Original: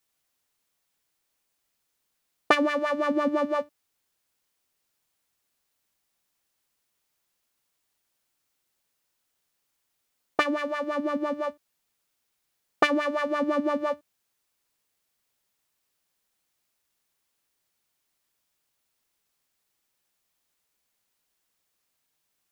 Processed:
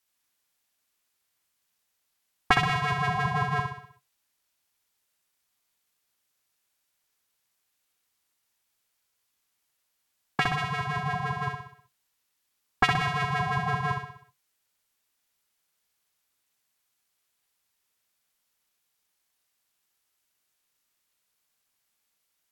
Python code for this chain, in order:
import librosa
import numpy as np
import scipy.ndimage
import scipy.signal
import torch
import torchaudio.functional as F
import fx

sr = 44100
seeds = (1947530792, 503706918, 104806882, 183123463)

p1 = scipy.signal.sosfilt(scipy.signal.butter(2, 240.0, 'highpass', fs=sr, output='sos'), x)
p2 = fx.low_shelf(p1, sr, hz=500.0, db=-5.0)
p3 = p2 + fx.echo_feedback(p2, sr, ms=63, feedback_pct=51, wet_db=-5, dry=0)
p4 = p3 * np.sin(2.0 * np.pi * 450.0 * np.arange(len(p3)) / sr)
y = p4 * librosa.db_to_amplitude(2.0)